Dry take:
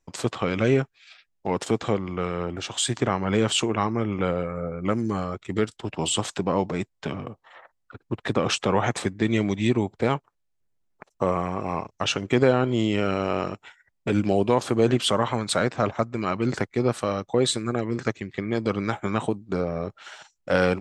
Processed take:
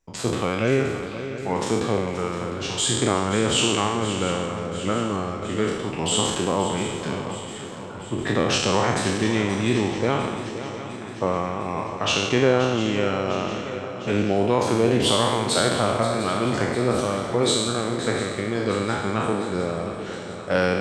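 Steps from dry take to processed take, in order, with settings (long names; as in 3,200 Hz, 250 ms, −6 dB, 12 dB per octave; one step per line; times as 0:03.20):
peak hold with a decay on every bin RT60 1.21 s
feedback echo with a long and a short gap by turns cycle 704 ms, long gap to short 3 to 1, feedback 58%, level −12 dB
level −1.5 dB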